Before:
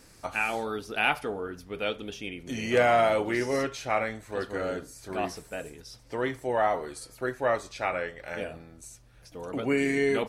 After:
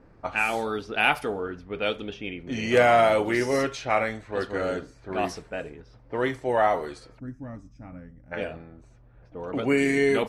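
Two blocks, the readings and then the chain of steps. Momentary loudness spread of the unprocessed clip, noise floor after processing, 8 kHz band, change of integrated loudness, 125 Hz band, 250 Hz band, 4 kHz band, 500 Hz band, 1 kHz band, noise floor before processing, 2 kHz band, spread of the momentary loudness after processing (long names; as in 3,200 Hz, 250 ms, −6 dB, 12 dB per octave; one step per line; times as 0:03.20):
15 LU, −54 dBFS, 0.0 dB, +3.5 dB, +3.5 dB, +3.5 dB, +3.0 dB, +3.0 dB, +3.0 dB, −55 dBFS, +3.0 dB, 20 LU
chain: gain on a spectral selection 0:07.19–0:08.32, 320–4,900 Hz −23 dB
low-pass that shuts in the quiet parts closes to 1,000 Hz, open at −25.5 dBFS
level +3.5 dB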